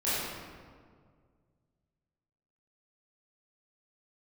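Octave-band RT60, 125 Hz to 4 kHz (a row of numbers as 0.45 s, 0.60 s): 2.8 s, 2.2 s, 2.1 s, 1.8 s, 1.4 s, 1.0 s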